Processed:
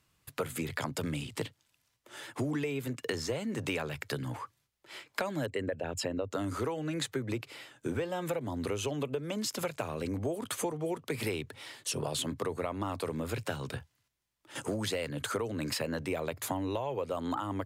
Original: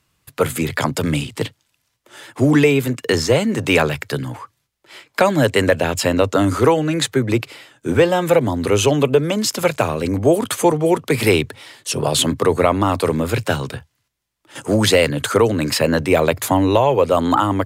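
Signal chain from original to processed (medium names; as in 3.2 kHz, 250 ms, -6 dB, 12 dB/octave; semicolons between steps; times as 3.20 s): 5.46–6.31 s: resonances exaggerated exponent 1.5; compression 6:1, threshold -25 dBFS, peak gain reduction 15.5 dB; trim -6.5 dB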